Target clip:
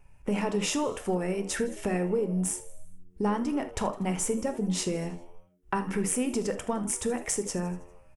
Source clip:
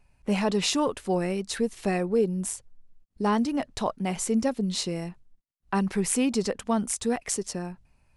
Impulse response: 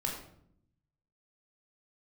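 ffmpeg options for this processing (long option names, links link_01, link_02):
-filter_complex "[0:a]equalizer=frequency=4200:width_type=o:width=0.42:gain=-13.5,acompressor=threshold=-29dB:ratio=6,aeval=exprs='0.178*(cos(1*acos(clip(val(0)/0.178,-1,1)))-cos(1*PI/2))+0.00398*(cos(2*acos(clip(val(0)/0.178,-1,1)))-cos(2*PI/2))+0.00178*(cos(6*acos(clip(val(0)/0.178,-1,1)))-cos(6*PI/2))':channel_layout=same,asplit=6[link_01][link_02][link_03][link_04][link_05][link_06];[link_02]adelay=80,afreqshift=88,volume=-18dB[link_07];[link_03]adelay=160,afreqshift=176,volume=-22.7dB[link_08];[link_04]adelay=240,afreqshift=264,volume=-27.5dB[link_09];[link_05]adelay=320,afreqshift=352,volume=-32.2dB[link_10];[link_06]adelay=400,afreqshift=440,volume=-36.9dB[link_11];[link_01][link_07][link_08][link_09][link_10][link_11]amix=inputs=6:normalize=0,asplit=2[link_12][link_13];[1:a]atrim=start_sample=2205,atrim=end_sample=3528[link_14];[link_13][link_14]afir=irnorm=-1:irlink=0,volume=-5dB[link_15];[link_12][link_15]amix=inputs=2:normalize=0"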